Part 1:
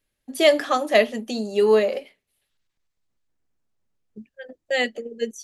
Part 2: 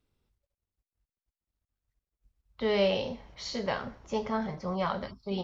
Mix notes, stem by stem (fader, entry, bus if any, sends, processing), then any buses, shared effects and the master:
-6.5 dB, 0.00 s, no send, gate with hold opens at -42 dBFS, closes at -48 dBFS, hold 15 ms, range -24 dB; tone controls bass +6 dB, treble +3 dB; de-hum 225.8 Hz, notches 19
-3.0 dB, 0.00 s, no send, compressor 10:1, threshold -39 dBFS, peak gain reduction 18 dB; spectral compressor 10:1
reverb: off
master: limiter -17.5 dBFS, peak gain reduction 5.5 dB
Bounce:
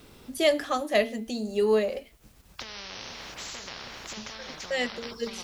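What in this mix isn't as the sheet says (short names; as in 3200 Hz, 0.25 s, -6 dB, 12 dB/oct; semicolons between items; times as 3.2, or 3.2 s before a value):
stem 2 -3.0 dB -> +7.5 dB; master: missing limiter -17.5 dBFS, peak gain reduction 5.5 dB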